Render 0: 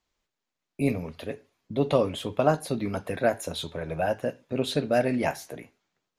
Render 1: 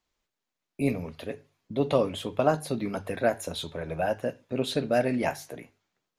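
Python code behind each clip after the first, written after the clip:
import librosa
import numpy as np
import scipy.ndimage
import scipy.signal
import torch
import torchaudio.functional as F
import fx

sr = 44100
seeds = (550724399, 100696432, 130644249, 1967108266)

y = fx.hum_notches(x, sr, base_hz=50, count=3)
y = F.gain(torch.from_numpy(y), -1.0).numpy()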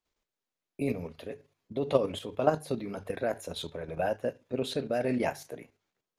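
y = fx.peak_eq(x, sr, hz=450.0, db=4.0, octaves=0.73)
y = fx.level_steps(y, sr, step_db=9)
y = F.gain(torch.from_numpy(y), -1.0).numpy()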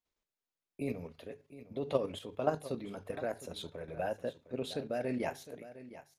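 y = x + 10.0 ** (-15.0 / 20.0) * np.pad(x, (int(709 * sr / 1000.0), 0))[:len(x)]
y = F.gain(torch.from_numpy(y), -6.0).numpy()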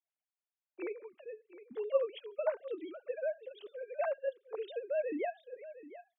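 y = fx.sine_speech(x, sr)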